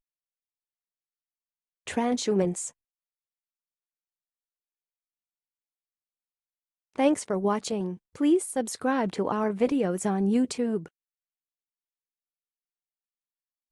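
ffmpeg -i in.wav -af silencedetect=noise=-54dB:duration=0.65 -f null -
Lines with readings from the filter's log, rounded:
silence_start: 0.00
silence_end: 1.87 | silence_duration: 1.87
silence_start: 2.71
silence_end: 6.94 | silence_duration: 4.22
silence_start: 10.88
silence_end: 13.72 | silence_duration: 2.84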